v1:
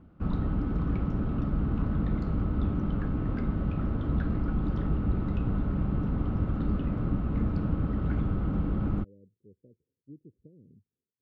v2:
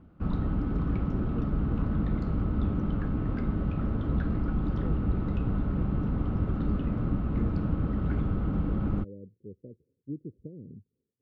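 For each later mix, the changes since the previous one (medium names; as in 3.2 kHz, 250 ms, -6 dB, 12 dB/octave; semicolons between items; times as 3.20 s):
speech +11.0 dB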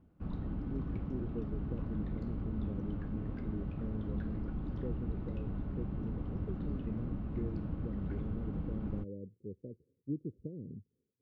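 background -10.0 dB; master: add peaking EQ 1.3 kHz -8 dB 0.22 oct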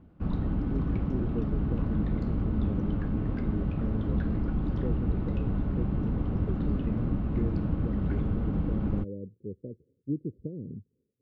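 speech +6.0 dB; background +9.5 dB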